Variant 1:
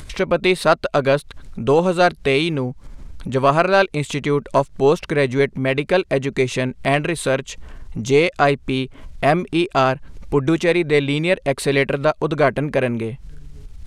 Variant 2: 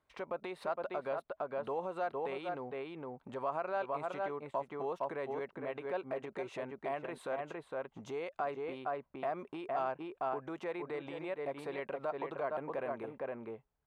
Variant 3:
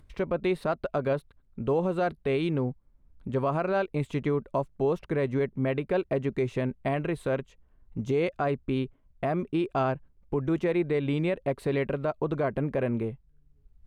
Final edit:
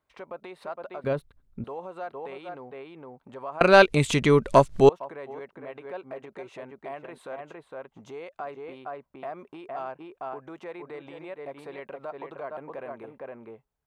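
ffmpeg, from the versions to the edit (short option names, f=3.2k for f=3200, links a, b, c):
-filter_complex "[1:a]asplit=3[a][b][c];[a]atrim=end=1.042[d];[2:a]atrim=start=1.038:end=1.642[e];[b]atrim=start=1.638:end=3.612[f];[0:a]atrim=start=3.608:end=4.892[g];[c]atrim=start=4.888[h];[d][e]acrossfade=d=0.004:c1=hsin:c2=hsin[i];[i][f]acrossfade=d=0.004:c1=hsin:c2=hsin[j];[j][g]acrossfade=d=0.004:c1=hsin:c2=hsin[k];[k][h]acrossfade=d=0.004:c1=hsin:c2=hsin"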